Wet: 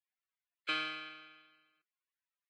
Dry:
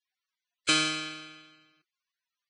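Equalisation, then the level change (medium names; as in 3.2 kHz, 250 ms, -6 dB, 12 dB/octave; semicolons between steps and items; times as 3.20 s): high-pass 1.3 kHz 6 dB/octave; distance through air 440 m; -1.5 dB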